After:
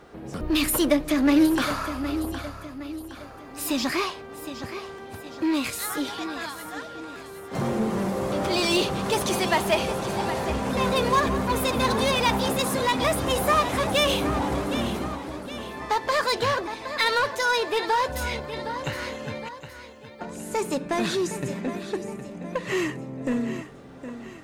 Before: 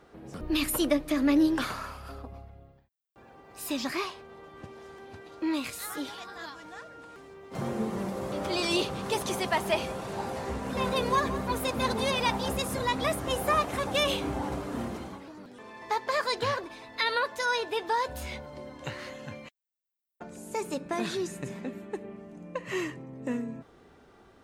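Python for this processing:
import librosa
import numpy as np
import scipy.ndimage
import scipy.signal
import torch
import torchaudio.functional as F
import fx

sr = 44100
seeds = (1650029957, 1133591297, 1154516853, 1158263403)

p1 = fx.highpass(x, sr, hz=120.0, slope=24, at=(12.47, 12.99))
p2 = fx.echo_feedback(p1, sr, ms=765, feedback_pct=44, wet_db=-13.0)
p3 = 10.0 ** (-30.0 / 20.0) * (np.abs((p2 / 10.0 ** (-30.0 / 20.0) + 3.0) % 4.0 - 2.0) - 1.0)
p4 = p2 + (p3 * 10.0 ** (-8.0 / 20.0))
y = p4 * 10.0 ** (4.5 / 20.0)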